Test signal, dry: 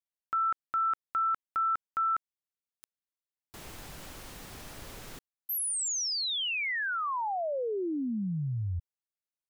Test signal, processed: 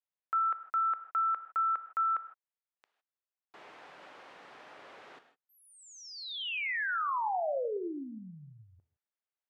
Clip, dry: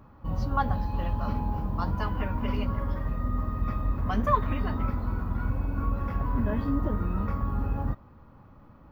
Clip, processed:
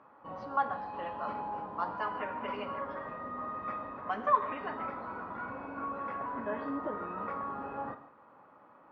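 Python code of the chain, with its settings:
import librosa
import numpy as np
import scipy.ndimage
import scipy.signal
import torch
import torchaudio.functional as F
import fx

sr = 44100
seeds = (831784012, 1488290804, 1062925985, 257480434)

p1 = fx.bandpass_edges(x, sr, low_hz=500.0, high_hz=2200.0)
p2 = fx.rider(p1, sr, range_db=4, speed_s=0.5)
p3 = p1 + F.gain(torch.from_numpy(p2), -2.0).numpy()
p4 = fx.rev_gated(p3, sr, seeds[0], gate_ms=180, shape='flat', drr_db=9.5)
y = F.gain(torch.from_numpy(p4), -5.0).numpy()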